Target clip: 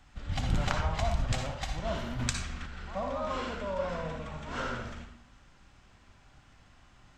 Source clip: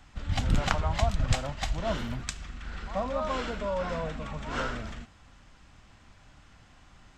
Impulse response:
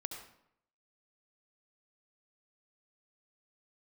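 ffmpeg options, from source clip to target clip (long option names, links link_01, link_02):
-filter_complex "[1:a]atrim=start_sample=2205,asetrate=52920,aresample=44100[link_01];[0:a][link_01]afir=irnorm=-1:irlink=0,asplit=3[link_02][link_03][link_04];[link_02]afade=type=out:start_time=2.18:duration=0.02[link_05];[link_03]acontrast=83,afade=type=in:start_time=2.18:duration=0.02,afade=type=out:start_time=2.65:duration=0.02[link_06];[link_04]afade=type=in:start_time=2.65:duration=0.02[link_07];[link_05][link_06][link_07]amix=inputs=3:normalize=0"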